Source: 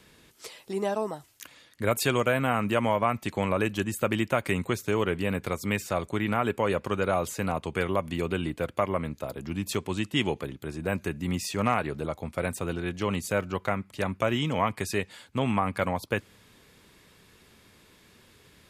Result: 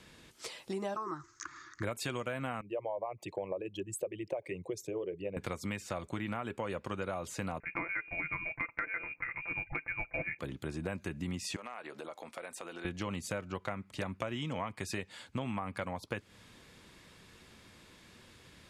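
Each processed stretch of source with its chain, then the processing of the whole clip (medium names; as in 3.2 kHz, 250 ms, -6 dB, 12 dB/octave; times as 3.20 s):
0.96–1.83 s: FFT filter 150 Hz 0 dB, 240 Hz -14 dB, 340 Hz +12 dB, 520 Hz -21 dB, 760 Hz -12 dB, 1.2 kHz +14 dB, 2 kHz -1 dB, 2.9 kHz -17 dB, 6.5 kHz +3 dB, 10 kHz -29 dB + tape noise reduction on one side only encoder only
2.61–5.37 s: resonances exaggerated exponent 2 + high-pass 180 Hz + static phaser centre 570 Hz, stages 4
7.60–10.39 s: tilt EQ +2.5 dB/octave + comb 5.7 ms, depth 68% + frequency inversion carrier 2.6 kHz
11.56–12.85 s: high-pass 440 Hz + compression 8:1, threshold -39 dBFS
whole clip: low-pass 9.5 kHz 12 dB/octave; band-stop 420 Hz, Q 12; compression, threshold -34 dBFS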